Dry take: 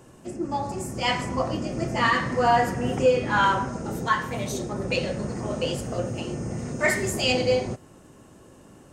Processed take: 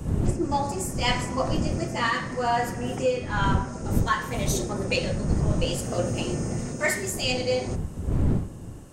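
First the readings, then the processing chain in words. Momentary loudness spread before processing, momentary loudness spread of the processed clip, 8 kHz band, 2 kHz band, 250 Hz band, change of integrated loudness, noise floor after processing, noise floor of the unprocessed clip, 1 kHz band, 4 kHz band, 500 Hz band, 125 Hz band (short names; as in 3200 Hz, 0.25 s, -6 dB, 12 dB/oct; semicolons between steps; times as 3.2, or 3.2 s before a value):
10 LU, 4 LU, +3.5 dB, -3.0 dB, +1.0 dB, -1.5 dB, -37 dBFS, -51 dBFS, -3.5 dB, -1.0 dB, -2.5 dB, +4.5 dB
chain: wind noise 150 Hz -27 dBFS; high shelf 5100 Hz +7.5 dB; vocal rider within 5 dB 0.5 s; gain -2.5 dB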